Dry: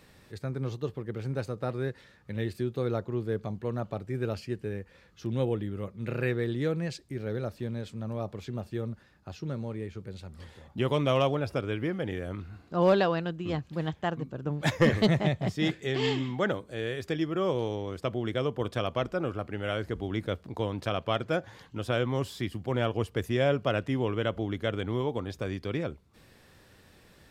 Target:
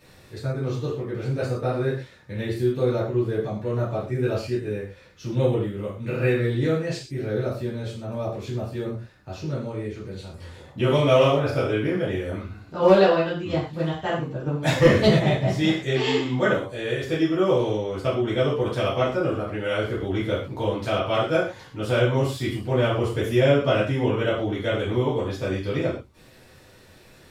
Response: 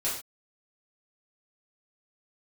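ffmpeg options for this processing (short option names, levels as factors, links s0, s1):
-filter_complex "[0:a]asettb=1/sr,asplit=3[s0][s1][s2];[s0]atrim=end=10.834[s3];[s1]atrim=start=10.83:end=11.71,asetpts=PTS-STARTPTS,afade=t=in:d=0.004:c=qsin,afade=t=out:st=0.876:d=0.004:c=qsin,asplit=2[s4][s5];[s5]adelay=33,volume=0.501[s6];[s4][s6]amix=inputs=2:normalize=0,atrim=end_sample=38808[s7];[s2]atrim=start=11.706[s8];[s3][s7]acrossfade=d=0.004:c1=hsin:c2=qsin[s9];[s9][s8]acrossfade=d=0.004:c1=qsin:c2=hsin[s10];[1:a]atrim=start_sample=2205,atrim=end_sample=6615[s11];[s10][s11]afir=irnorm=-1:irlink=0"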